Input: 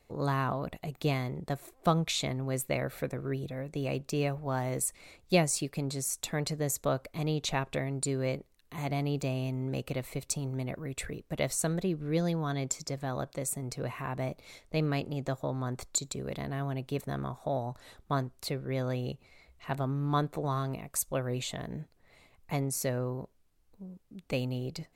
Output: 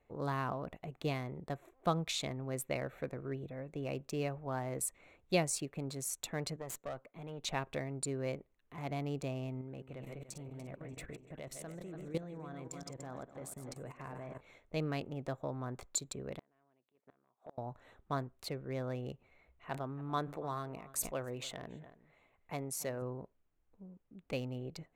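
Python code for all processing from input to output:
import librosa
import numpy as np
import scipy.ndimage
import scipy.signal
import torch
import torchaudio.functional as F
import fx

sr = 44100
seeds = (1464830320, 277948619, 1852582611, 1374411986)

y = fx.chain(x, sr, fx.highpass(hz=130.0, slope=24),
    fx.tube_stage(drive_db=29.0, bias=0.8), at=(6.56, 7.45))
y = fx.chain(y, sr, fx.reverse_delay_fb(ms=146, feedback_pct=68, wet_db=-8.0),
    fx.level_steps(step_db=13), at=(9.61, 14.41))
y = fx.chain(y, sr, fx.highpass(hz=270.0, slope=12),
    fx.transient(attack_db=-12, sustain_db=-2),
    fx.gate_flip(shuts_db=-31.0, range_db=-29), at=(16.39, 17.58))
y = fx.chain(y, sr, fx.low_shelf(hz=250.0, db=-6.0),
    fx.echo_single(ms=283, db=-19.0),
    fx.sustainer(db_per_s=100.0), at=(19.69, 23.02))
y = fx.wiener(y, sr, points=9)
y = fx.bass_treble(y, sr, bass_db=-3, treble_db=0)
y = y * 10.0 ** (-5.0 / 20.0)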